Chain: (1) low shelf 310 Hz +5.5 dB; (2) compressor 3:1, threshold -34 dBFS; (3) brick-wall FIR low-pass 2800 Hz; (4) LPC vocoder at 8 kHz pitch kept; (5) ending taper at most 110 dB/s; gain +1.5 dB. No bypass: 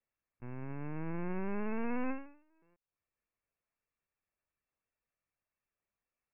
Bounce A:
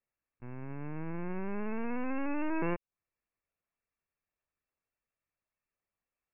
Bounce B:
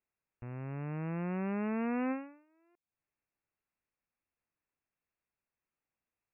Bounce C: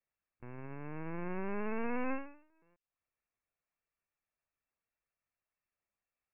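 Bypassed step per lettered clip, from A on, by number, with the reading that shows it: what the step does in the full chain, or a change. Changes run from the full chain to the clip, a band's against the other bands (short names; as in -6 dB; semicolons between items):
5, crest factor change +2.0 dB; 4, 125 Hz band +2.5 dB; 1, crest factor change +2.0 dB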